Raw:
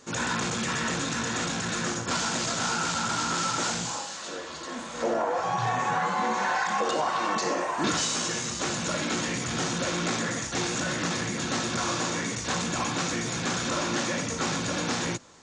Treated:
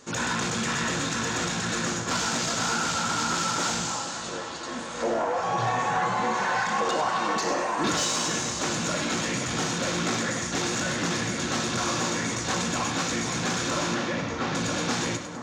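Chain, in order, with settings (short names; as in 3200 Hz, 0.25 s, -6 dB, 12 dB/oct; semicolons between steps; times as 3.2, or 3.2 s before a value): 13.94–14.55 air absorption 170 m; soft clip -18.5 dBFS, distortion -23 dB; on a send: split-band echo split 1600 Hz, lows 0.472 s, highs 0.102 s, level -9 dB; on the sum: gain +1.5 dB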